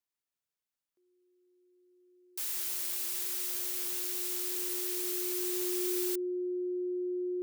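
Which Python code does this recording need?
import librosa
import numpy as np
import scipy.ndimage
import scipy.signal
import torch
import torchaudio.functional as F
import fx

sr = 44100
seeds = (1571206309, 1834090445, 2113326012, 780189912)

y = fx.notch(x, sr, hz=360.0, q=30.0)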